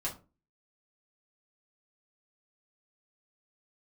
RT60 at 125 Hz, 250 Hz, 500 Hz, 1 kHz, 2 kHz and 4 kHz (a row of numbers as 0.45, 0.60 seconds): 0.40, 0.40, 0.35, 0.30, 0.25, 0.20 seconds